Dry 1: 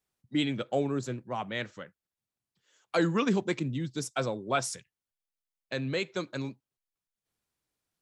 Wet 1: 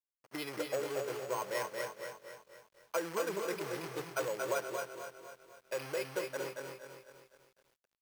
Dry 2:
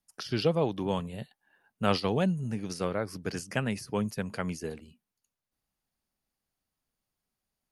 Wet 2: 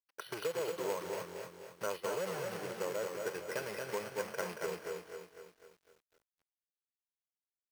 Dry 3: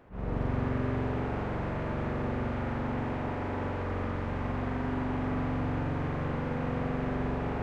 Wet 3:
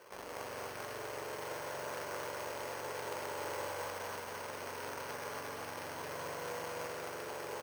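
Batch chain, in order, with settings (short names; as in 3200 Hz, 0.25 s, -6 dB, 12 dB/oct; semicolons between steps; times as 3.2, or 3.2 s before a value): spectral gate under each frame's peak -30 dB strong; tilt -2.5 dB/oct; comb 2 ms, depth 83%; compressor 12:1, threshold -25 dBFS; soft clip -17.5 dBFS; companded quantiser 4-bit; BPF 470–4200 Hz; feedback echo 0.228 s, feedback 24%, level -5 dB; careless resampling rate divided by 6×, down filtered, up hold; lo-fi delay 0.251 s, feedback 55%, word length 10-bit, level -8 dB; gain -3 dB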